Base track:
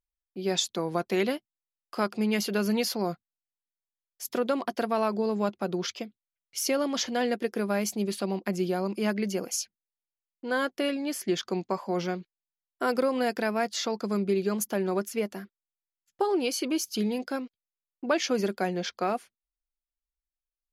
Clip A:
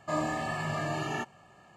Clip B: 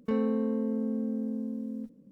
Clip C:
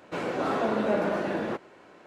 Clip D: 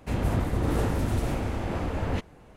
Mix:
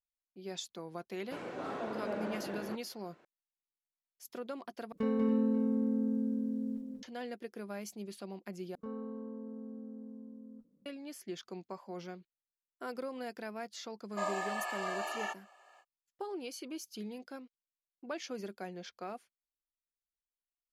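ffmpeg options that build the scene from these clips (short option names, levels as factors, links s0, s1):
-filter_complex "[2:a]asplit=2[s0][s1];[0:a]volume=0.188[s2];[s0]aecho=1:1:190|282|538:0.631|0.299|0.15[s3];[s1]highshelf=f=1600:t=q:w=3:g=-6.5[s4];[1:a]highpass=f=530:w=0.5412,highpass=f=530:w=1.3066[s5];[s2]asplit=3[s6][s7][s8];[s6]atrim=end=4.924[s9];[s3]atrim=end=2.11,asetpts=PTS-STARTPTS,volume=0.631[s10];[s7]atrim=start=7.026:end=8.754[s11];[s4]atrim=end=2.11,asetpts=PTS-STARTPTS,volume=0.188[s12];[s8]atrim=start=10.856[s13];[3:a]atrim=end=2.06,asetpts=PTS-STARTPTS,volume=0.251,afade=t=in:d=0.004:c=hsin,afade=t=out:st=2.056:d=0.004:c=hsin,adelay=1190[s14];[s5]atrim=end=1.76,asetpts=PTS-STARTPTS,volume=0.708,afade=t=in:d=0.05,afade=t=out:st=1.71:d=0.05,adelay=14090[s15];[s9][s10]acrossfade=d=0.004:c1=hsin:c2=hsin[s16];[s16][s11]acrossfade=d=0.004:c1=hsin:c2=hsin[s17];[s17][s12]acrossfade=d=0.004:c1=hsin:c2=hsin[s18];[s18][s13]acrossfade=d=0.004:c1=hsin:c2=hsin[s19];[s19][s14][s15]amix=inputs=3:normalize=0"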